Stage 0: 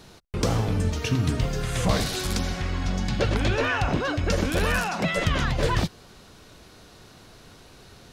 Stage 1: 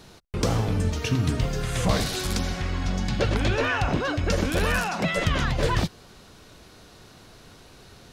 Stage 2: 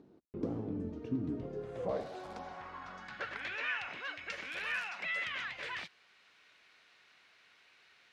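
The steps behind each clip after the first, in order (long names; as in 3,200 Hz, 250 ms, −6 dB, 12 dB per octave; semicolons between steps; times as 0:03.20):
no processing that can be heard
upward compression, threshold −44 dBFS; band-pass filter sweep 300 Hz → 2,200 Hz, 0:01.26–0:03.62; level −4.5 dB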